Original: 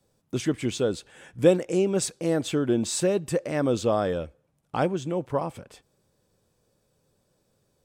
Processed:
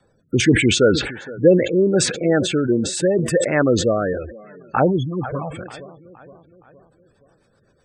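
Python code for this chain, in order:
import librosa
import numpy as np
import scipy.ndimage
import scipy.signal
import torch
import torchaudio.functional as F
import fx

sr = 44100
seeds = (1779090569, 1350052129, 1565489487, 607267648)

y = fx.block_float(x, sr, bits=7)
y = fx.rider(y, sr, range_db=5, speed_s=2.0)
y = fx.rotary_switch(y, sr, hz=0.8, then_hz=8.0, switch_at_s=5.86)
y = fx.env_lowpass(y, sr, base_hz=1200.0, full_db=-19.0, at=(0.8, 2.22))
y = fx.peak_eq(y, sr, hz=1600.0, db=9.5, octaves=1.5)
y = fx.echo_feedback(y, sr, ms=468, feedback_pct=49, wet_db=-19.5)
y = fx.env_flanger(y, sr, rest_ms=6.1, full_db=-19.0, at=(4.13, 5.53))
y = fx.spec_gate(y, sr, threshold_db=-20, keep='strong')
y = fx.sustainer(y, sr, db_per_s=75.0)
y = y * librosa.db_to_amplitude(7.5)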